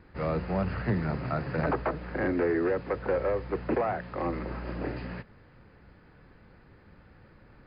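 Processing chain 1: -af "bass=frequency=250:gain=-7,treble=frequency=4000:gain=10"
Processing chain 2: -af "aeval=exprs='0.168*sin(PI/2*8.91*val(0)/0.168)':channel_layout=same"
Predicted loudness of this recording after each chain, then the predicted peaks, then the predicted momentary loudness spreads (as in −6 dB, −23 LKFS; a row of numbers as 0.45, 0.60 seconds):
−32.0, −18.5 LKFS; −16.5, −15.5 dBFS; 9, 16 LU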